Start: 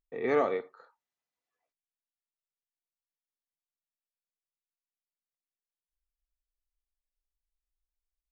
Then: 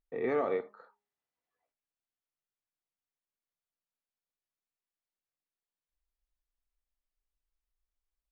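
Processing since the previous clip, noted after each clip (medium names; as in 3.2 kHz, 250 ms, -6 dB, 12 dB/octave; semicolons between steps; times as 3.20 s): low-pass 2.1 kHz 6 dB/octave; de-hum 205.8 Hz, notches 5; peak limiter -24 dBFS, peak gain reduction 7.5 dB; trim +1.5 dB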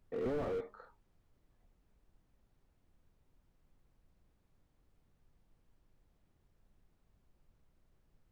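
added noise brown -69 dBFS; slew-rate limiter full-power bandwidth 8.8 Hz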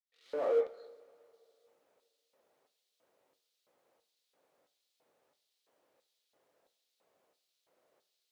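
fade-in on the opening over 0.70 s; LFO high-pass square 1.5 Hz 520–3900 Hz; two-slope reverb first 0.38 s, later 2.7 s, from -18 dB, DRR 8 dB; trim +4 dB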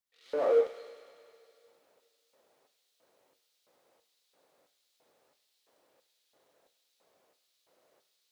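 feedback echo behind a high-pass 100 ms, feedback 77%, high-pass 2.5 kHz, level -6 dB; trim +4.5 dB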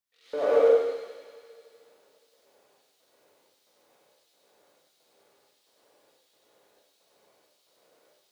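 plate-style reverb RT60 0.94 s, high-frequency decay 0.95×, pre-delay 80 ms, DRR -5.5 dB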